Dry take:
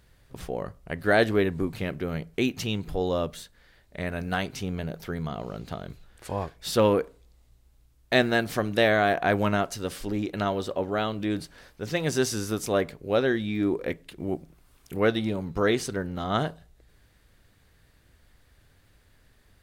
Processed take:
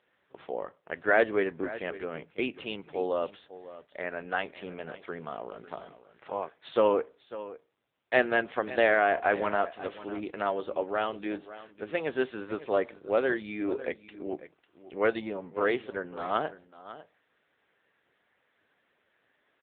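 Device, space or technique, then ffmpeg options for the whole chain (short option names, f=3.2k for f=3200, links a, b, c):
satellite phone: -filter_complex "[0:a]asettb=1/sr,asplit=3[a][b][c];[a]atrim=end=3.394[d];[b]atrim=start=3.39:end=4.03,asetpts=PTS-STARTPTS,afade=t=in:d=0.004:c=qsin,afade=t=out:st=0.636:d=0.004:c=qsin,equalizer=f=550:t=o:w=0.85:g=2[e];[c]atrim=start=4.026[f];[d][e]acrossfade=d=0.004:c1=hsin:c2=qsin[g];[g][f]acrossfade=d=0.004:c1=qsin:c2=hsin,highpass=390,lowpass=3.3k,aecho=1:1:549:0.168" -ar 8000 -c:a libopencore_amrnb -b:a 6700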